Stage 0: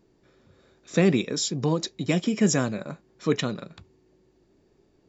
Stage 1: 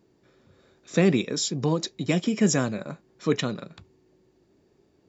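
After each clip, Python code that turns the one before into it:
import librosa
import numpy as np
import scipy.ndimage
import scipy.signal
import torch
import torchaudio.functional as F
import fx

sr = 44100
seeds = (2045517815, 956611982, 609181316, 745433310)

y = scipy.signal.sosfilt(scipy.signal.butter(2, 60.0, 'highpass', fs=sr, output='sos'), x)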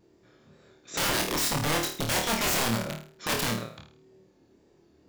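y = (np.mod(10.0 ** (23.0 / 20.0) * x + 1.0, 2.0) - 1.0) / 10.0 ** (23.0 / 20.0)
y = fx.wow_flutter(y, sr, seeds[0], rate_hz=2.1, depth_cents=57.0)
y = fx.room_flutter(y, sr, wall_m=4.5, rt60_s=0.43)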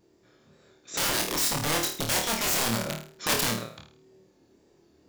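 y = fx.rider(x, sr, range_db=4, speed_s=0.5)
y = fx.bass_treble(y, sr, bass_db=-2, treble_db=4)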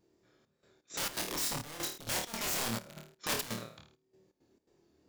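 y = fx.step_gate(x, sr, bpm=167, pattern='xxxxx..xx.xx.', floor_db=-12.0, edge_ms=4.5)
y = F.gain(torch.from_numpy(y), -8.0).numpy()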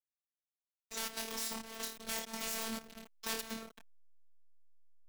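y = fx.delta_hold(x, sr, step_db=-43.0)
y = fx.robotise(y, sr, hz=224.0)
y = fx.band_squash(y, sr, depth_pct=40)
y = F.gain(torch.from_numpy(y), -2.5).numpy()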